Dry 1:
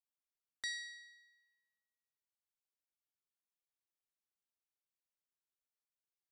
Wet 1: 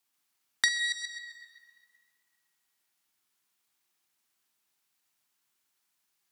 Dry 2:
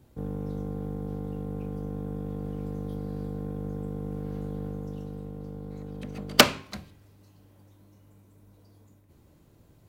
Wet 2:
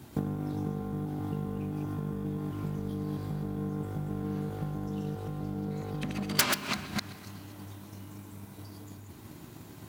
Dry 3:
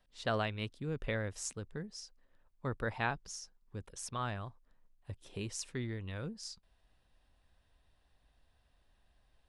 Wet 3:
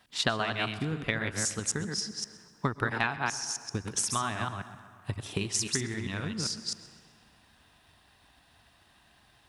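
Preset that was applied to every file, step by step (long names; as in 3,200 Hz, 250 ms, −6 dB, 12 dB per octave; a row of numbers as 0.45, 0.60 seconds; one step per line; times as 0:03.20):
delay that plays each chunk backwards 132 ms, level −3.5 dB
wave folding −17.5 dBFS
parametric band 520 Hz −11 dB 0.47 octaves
downward compressor 4 to 1, threshold −43 dBFS
high-pass filter 96 Hz 12 dB per octave
low-shelf EQ 250 Hz −5 dB
tape delay 130 ms, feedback 66%, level −16 dB, low-pass 4,800 Hz
dense smooth reverb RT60 2.4 s, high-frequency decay 0.6×, pre-delay 95 ms, DRR 17 dB
pitch vibrato 5.9 Hz 7.8 cents
transient designer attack +6 dB, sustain +1 dB
normalise the peak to −9 dBFS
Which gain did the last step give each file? +15.5, +13.5, +14.5 decibels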